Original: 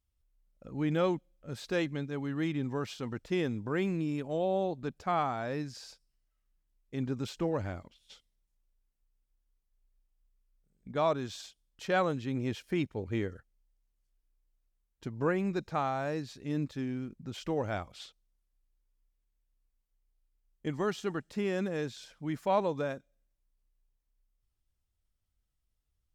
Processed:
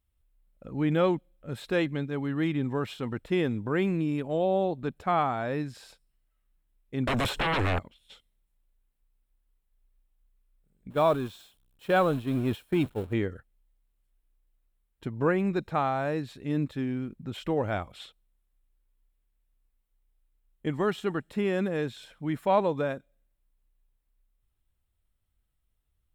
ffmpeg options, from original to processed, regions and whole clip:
ffmpeg -i in.wav -filter_complex "[0:a]asettb=1/sr,asplit=3[link_01][link_02][link_03];[link_01]atrim=end=7.074[link_04];[link_02]atrim=start=7.07:end=7.79,asetpts=PTS-STARTPTS,afade=type=in:duration=0.004:curve=qsin,afade=type=out:start_time=0.716:duration=0.004:curve=qsin,acrossover=split=440|1300[link_05][link_06][link_07];[link_05]acompressor=threshold=-42dB:ratio=4[link_08];[link_06]acompressor=threshold=-45dB:ratio=4[link_09];[link_07]acompressor=threshold=-57dB:ratio=4[link_10];[link_08][link_09][link_10]amix=inputs=3:normalize=0,aeval=exprs='0.0422*sin(PI/2*7.94*val(0)/0.0422)':channel_layout=same[link_11];[link_03]atrim=start=7.786[link_12];[link_04][link_11]acrossfade=duration=0.004:curve1=hsin:curve2=qsin[link_13];[link_13][link_12]acrossfade=duration=0.004:curve1=qsin:curve2=hsin,asettb=1/sr,asplit=3[link_14][link_15][link_16];[link_14]atrim=end=10.904[link_17];[link_15]atrim=start=10.9:end=13.13,asetpts=PTS-STARTPTS,afade=type=in:duration=0.004:curve=qsin,afade=type=out:start_time=2.226:duration=0.004:curve=qsin,aeval=exprs='val(0)+0.5*0.0106*sgn(val(0))':channel_layout=same,agate=range=-33dB:threshold=-32dB:ratio=3:release=100:detection=peak,equalizer=frequency=2000:width=4.5:gain=-6.5[link_18];[link_16]atrim=start=13.126[link_19];[link_17][link_18]acrossfade=duration=0.004:curve1=hsin:curve2=qsin[link_20];[link_20][link_19]acrossfade=duration=0.004:curve1=qsin:curve2=hsin,equalizer=frequency=6100:width_type=o:width=0.45:gain=-13,bandreject=frequency=4700:width=6.7,volume=4.5dB" out.wav

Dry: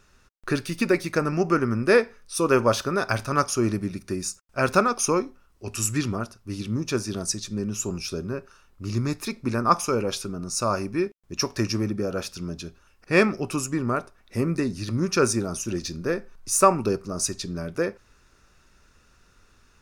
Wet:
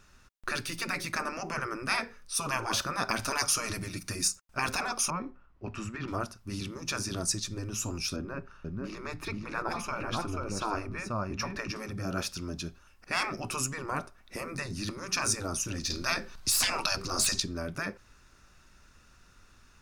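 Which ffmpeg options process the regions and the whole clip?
ffmpeg -i in.wav -filter_complex "[0:a]asettb=1/sr,asplit=3[link_01][link_02][link_03];[link_01]atrim=end=3.234[link_04];[link_02]atrim=start=3.23:end=4.28,asetpts=PTS-STARTPTS,afade=type=in:duration=0.004:curve=qsin,afade=type=out:start_time=1.046:duration=0.004:curve=qsin,highshelf=frequency=2700:gain=7.5,aecho=1:1:6.5:0.5,atrim=end_sample=46305[link_05];[link_03]atrim=start=4.276[link_06];[link_04][link_05]acrossfade=duration=0.004:curve1=hsin:curve2=qsin[link_07];[link_07][link_06]acrossfade=duration=0.004:curve1=qsin:curve2=hsin,asettb=1/sr,asplit=3[link_08][link_09][link_10];[link_08]atrim=end=5.104[link_11];[link_09]atrim=start=5.1:end=6.08,asetpts=PTS-STARTPTS,afade=type=in:duration=0.004:curve=qsin,afade=type=out:start_time=0.976:duration=0.004:curve=qsin,lowpass=2000,acompressor=threshold=-25dB:ratio=2.5:attack=3.2:release=140:knee=1:detection=peak[link_12];[link_10]atrim=start=6.076[link_13];[link_11][link_12]acrossfade=duration=0.004:curve1=hsin:curve2=qsin[link_14];[link_14][link_13]acrossfade=duration=0.004:curve1=qsin:curve2=hsin,asettb=1/sr,asplit=3[link_15][link_16][link_17];[link_15]atrim=end=8.164[link_18];[link_16]atrim=start=8.16:end=11.76,asetpts=PTS-STARTPTS,afade=type=in:duration=0.004:curve=qsin,afade=type=out:start_time=3.596:duration=0.004:curve=qsin,bass=frequency=250:gain=6,treble=frequency=4000:gain=-14,aecho=1:1:484:0.376,atrim=end_sample=158760[link_19];[link_17]atrim=start=11.756[link_20];[link_18][link_19]acrossfade=duration=0.004:curve1=hsin:curve2=qsin[link_21];[link_21][link_20]acrossfade=duration=0.004:curve1=qsin:curve2=hsin,asettb=1/sr,asplit=3[link_22][link_23][link_24];[link_22]atrim=end=15.904[link_25];[link_23]atrim=start=15.9:end=17.4,asetpts=PTS-STARTPTS,afade=type=in:duration=0.004:curve=qsin,afade=type=out:start_time=1.496:duration=0.004:curve=qsin,equalizer=frequency=4200:width_type=o:width=1.3:gain=9.5,acontrast=74[link_26];[link_24]atrim=start=17.396[link_27];[link_25][link_26]acrossfade=duration=0.004:curve1=hsin:curve2=qsin[link_28];[link_28][link_27]acrossfade=duration=0.004:curve1=qsin:curve2=hsin,afftfilt=real='re*lt(hypot(re,im),0.224)':imag='im*lt(hypot(re,im),0.224)':win_size=1024:overlap=0.75,deesser=0.35,equalizer=frequency=440:width_type=o:width=0.54:gain=-5.5" out.wav

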